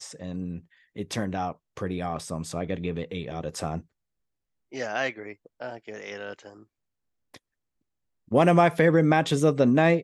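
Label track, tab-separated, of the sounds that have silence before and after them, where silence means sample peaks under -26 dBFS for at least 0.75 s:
4.770000	6.330000	sound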